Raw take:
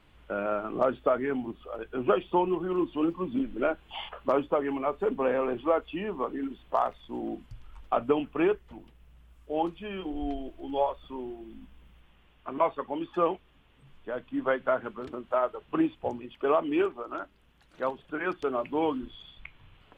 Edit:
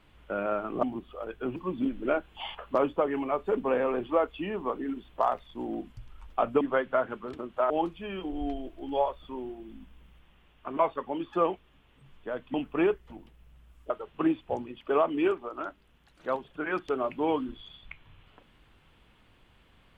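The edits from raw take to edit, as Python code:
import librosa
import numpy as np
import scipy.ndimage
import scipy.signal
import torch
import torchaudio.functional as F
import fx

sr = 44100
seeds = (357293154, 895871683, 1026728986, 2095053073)

y = fx.edit(x, sr, fx.cut(start_s=0.83, length_s=0.52),
    fx.cut(start_s=2.08, length_s=1.02),
    fx.swap(start_s=8.15, length_s=1.36, other_s=14.35, other_length_s=1.09), tone=tone)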